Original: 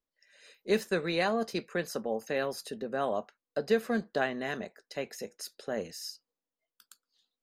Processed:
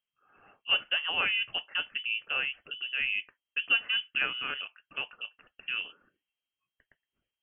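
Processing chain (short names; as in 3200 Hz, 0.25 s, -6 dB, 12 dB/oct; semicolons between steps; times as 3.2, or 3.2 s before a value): inverted band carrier 3200 Hz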